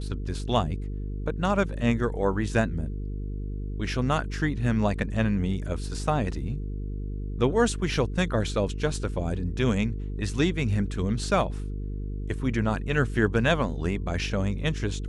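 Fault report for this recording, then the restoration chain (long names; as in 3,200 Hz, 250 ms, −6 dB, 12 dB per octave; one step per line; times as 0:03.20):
mains buzz 50 Hz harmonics 9 −32 dBFS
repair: hum removal 50 Hz, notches 9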